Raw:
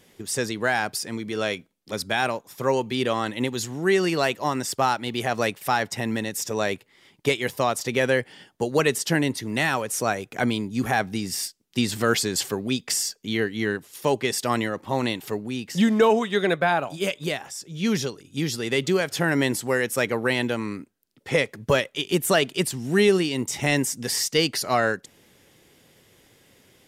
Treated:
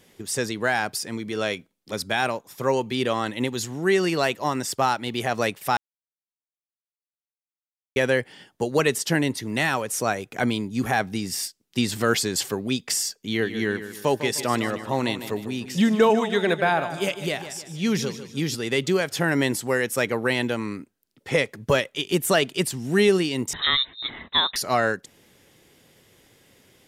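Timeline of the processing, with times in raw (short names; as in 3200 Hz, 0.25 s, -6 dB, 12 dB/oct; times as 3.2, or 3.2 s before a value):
5.77–7.96 mute
13.15–18.55 feedback echo 0.152 s, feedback 40%, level -11.5 dB
23.53–24.56 inverted band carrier 3900 Hz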